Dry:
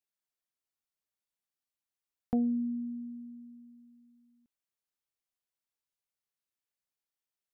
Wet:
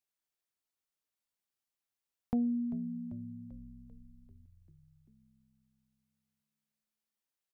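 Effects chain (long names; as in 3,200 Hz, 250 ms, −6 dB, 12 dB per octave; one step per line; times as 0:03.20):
dynamic equaliser 570 Hz, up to −6 dB, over −47 dBFS, Q 0.76
echo with shifted repeats 392 ms, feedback 64%, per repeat −65 Hz, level −15 dB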